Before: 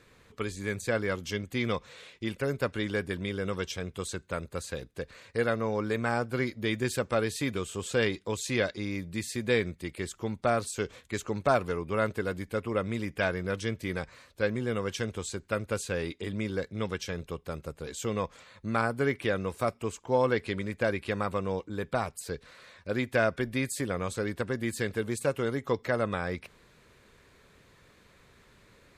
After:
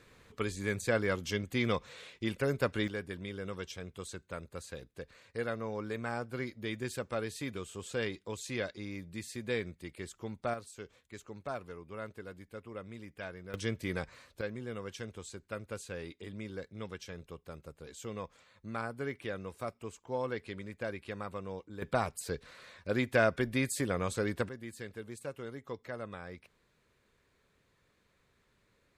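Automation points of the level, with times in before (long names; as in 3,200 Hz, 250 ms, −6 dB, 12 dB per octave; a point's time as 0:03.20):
−1 dB
from 0:02.88 −8 dB
from 0:10.54 −14.5 dB
from 0:13.54 −2.5 dB
from 0:14.41 −10 dB
from 0:21.82 −1 dB
from 0:24.49 −13 dB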